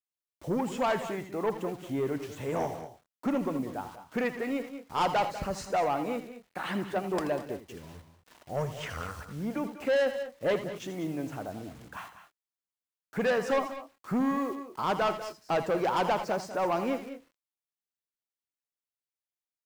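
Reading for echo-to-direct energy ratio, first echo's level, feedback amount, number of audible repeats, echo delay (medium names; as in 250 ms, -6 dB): -8.5 dB, -11.0 dB, no regular repeats, 2, 82 ms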